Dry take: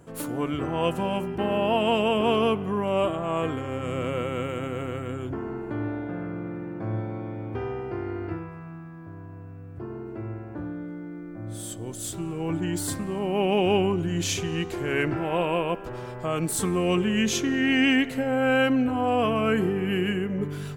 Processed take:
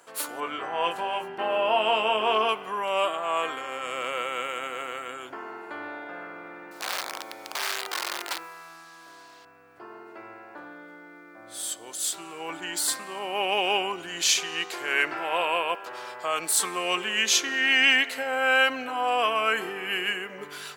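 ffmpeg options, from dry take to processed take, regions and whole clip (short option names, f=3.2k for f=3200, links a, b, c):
-filter_complex "[0:a]asettb=1/sr,asplit=3[a][b][c];[a]atrim=end=0.404[d];[b]atrim=start=0.4:end=2.49,asetpts=PTS-STARTPTS,afade=t=in:d=0.004:c=qsin,afade=t=out:st=2.086:d=0.004:c=qsin,highshelf=f=3.6k:g=-11.5,asplit=2[e][f];[f]adelay=23,volume=-5dB[g];[e][g]amix=inputs=2:normalize=0,atrim=end_sample=92169,aeval=exprs='val(0)+0.0251*(sin(2*PI*50*n/s)+sin(2*PI*2*50*n/s)/2+sin(2*PI*3*50*n/s)/3+sin(2*PI*4*50*n/s)/4+sin(2*PI*5*50*n/s)/5)':c=same[h];[c]atrim=start=2.486[i];[d][h]acrossfade=d=0.004:c1=hsin:c2=qsin[j];[j][i]acrossfade=d=0.004:c1=qsin:c2=hsin,asettb=1/sr,asplit=3[k][l][m];[k]atrim=end=6.714[n];[l]atrim=start=6.71:end=9.45,asetpts=PTS-STARTPTS,afade=t=in:d=0.004:c=qsin,afade=t=out:st=2.736:d=0.004:c=qsin,lowshelf=f=100:g=-12,acrusher=bits=8:mix=0:aa=0.5,aeval=exprs='(mod(25.1*val(0)+1,2)-1)/25.1':c=same[o];[m]atrim=start=9.446[p];[n][o]acrossfade=d=0.004:c1=hsin:c2=qsin[q];[q][p]acrossfade=d=0.004:c1=qsin:c2=hsin,highpass=890,equalizer=f=4.4k:t=o:w=0.56:g=4.5,volume=5.5dB"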